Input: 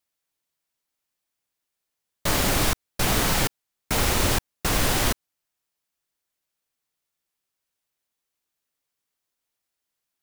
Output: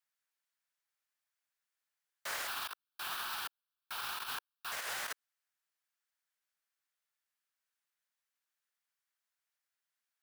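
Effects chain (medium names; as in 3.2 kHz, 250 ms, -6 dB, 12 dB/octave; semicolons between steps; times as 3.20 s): treble shelf 8.4 kHz +4 dB; gate -15 dBFS, range -43 dB; 2.47–4.72 s: static phaser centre 2 kHz, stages 6; compressor with a negative ratio -58 dBFS, ratio -0.5; high-pass 480 Hz 24 dB/octave; overdrive pedal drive 24 dB, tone 7.9 kHz, clips at -47.5 dBFS; peaking EQ 1.6 kHz +7.5 dB 0.87 oct; trim +14.5 dB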